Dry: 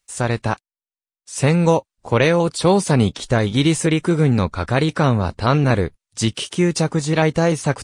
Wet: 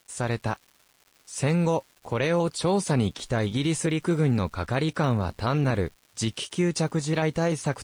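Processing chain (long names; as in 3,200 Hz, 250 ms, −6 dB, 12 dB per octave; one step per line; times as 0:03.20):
brickwall limiter −8 dBFS, peak gain reduction 5.5 dB
surface crackle 410 per second −38 dBFS
level −6.5 dB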